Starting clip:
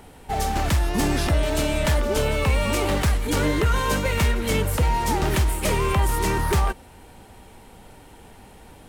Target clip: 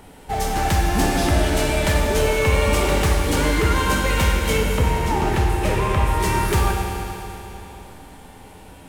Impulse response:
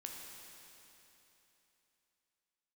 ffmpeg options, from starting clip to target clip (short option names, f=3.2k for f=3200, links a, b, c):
-filter_complex "[0:a]asettb=1/sr,asplit=3[a][b][c];[a]atrim=end=4.584[d];[b]atrim=start=4.58:end=6.2,asetpts=PTS-STARTPTS,afade=t=in:d=0.004:c=qsin,afade=t=out:st=1.616:d=0.004:c=qsin,highshelf=f=4k:g=-11.5[e];[c]atrim=start=6.196[f];[d][e]acrossfade=d=0.004:c1=hsin:c2=qsin[g];[g][f]acrossfade=d=0.004:c1=qsin:c2=hsin[h];[1:a]atrim=start_sample=2205[i];[h][i]afir=irnorm=-1:irlink=0,volume=6.5dB"